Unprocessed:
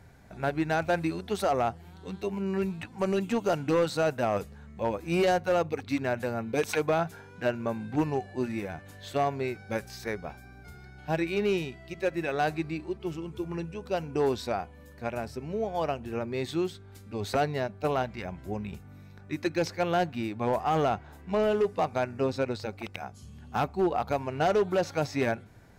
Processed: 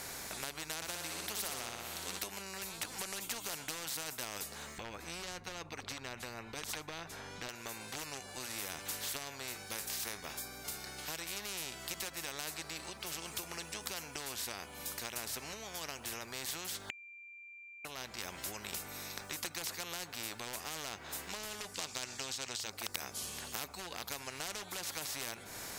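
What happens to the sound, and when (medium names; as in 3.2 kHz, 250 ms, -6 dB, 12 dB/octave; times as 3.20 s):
0.76–2.19 s: flutter echo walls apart 10.3 m, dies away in 0.6 s
4.78–7.49 s: RIAA curve playback
9.19–10.87 s: feedback comb 50 Hz, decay 0.2 s
16.90–17.85 s: bleep 2.37 kHz -8 dBFS
21.74–22.70 s: high-order bell 4.6 kHz +15.5 dB
whole clip: tone controls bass -11 dB, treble +11 dB; compression 4:1, threshold -40 dBFS; spectrum-flattening compressor 4:1; trim +5.5 dB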